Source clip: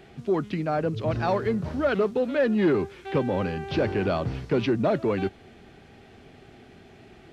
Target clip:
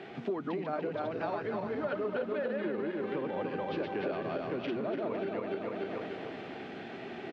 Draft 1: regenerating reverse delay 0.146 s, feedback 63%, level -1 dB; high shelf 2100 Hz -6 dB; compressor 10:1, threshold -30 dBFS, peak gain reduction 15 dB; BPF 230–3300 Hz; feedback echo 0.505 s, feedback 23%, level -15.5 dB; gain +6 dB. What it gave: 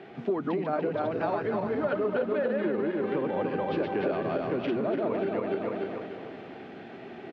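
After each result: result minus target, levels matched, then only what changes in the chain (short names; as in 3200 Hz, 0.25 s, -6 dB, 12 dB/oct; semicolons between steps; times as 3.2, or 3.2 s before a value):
compressor: peak gain reduction -6 dB; 4000 Hz band -5.0 dB
change: compressor 10:1, threshold -36.5 dBFS, peak gain reduction 21 dB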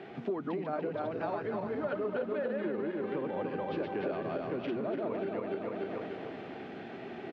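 4000 Hz band -4.0 dB
remove: high shelf 2100 Hz -6 dB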